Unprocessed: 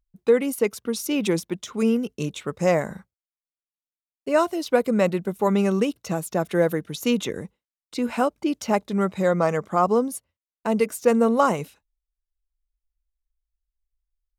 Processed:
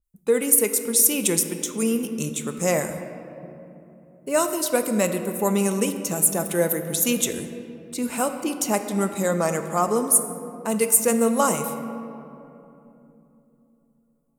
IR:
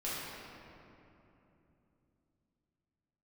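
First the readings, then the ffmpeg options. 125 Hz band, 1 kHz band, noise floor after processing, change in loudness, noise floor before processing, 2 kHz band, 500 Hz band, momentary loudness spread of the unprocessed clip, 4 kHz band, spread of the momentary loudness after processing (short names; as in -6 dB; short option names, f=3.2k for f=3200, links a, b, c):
-1.5 dB, -1.5 dB, -63 dBFS, +1.5 dB, under -85 dBFS, 0.0 dB, -1.5 dB, 10 LU, +2.5 dB, 17 LU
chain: -filter_complex "[0:a]highshelf=f=6.4k:t=q:w=1.5:g=11,asplit=2[a][b];[1:a]atrim=start_sample=2205[c];[b][c]afir=irnorm=-1:irlink=0,volume=-10dB[d];[a][d]amix=inputs=2:normalize=0,adynamicequalizer=threshold=0.0126:dfrequency=2300:dqfactor=0.7:tfrequency=2300:tqfactor=0.7:attack=5:release=100:ratio=0.375:range=4:mode=boostabove:tftype=highshelf,volume=-4dB"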